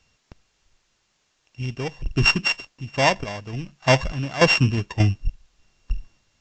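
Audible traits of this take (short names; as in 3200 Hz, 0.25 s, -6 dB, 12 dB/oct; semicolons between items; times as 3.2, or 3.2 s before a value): a buzz of ramps at a fixed pitch in blocks of 16 samples; random-step tremolo 3.4 Hz, depth 85%; a quantiser's noise floor 12-bit, dither triangular; AAC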